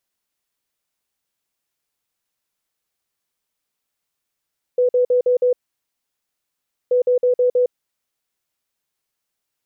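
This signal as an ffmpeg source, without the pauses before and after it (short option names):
-f lavfi -i "aevalsrc='0.237*sin(2*PI*496*t)*clip(min(mod(mod(t,2.13),0.16),0.11-mod(mod(t,2.13),0.16))/0.005,0,1)*lt(mod(t,2.13),0.8)':d=4.26:s=44100"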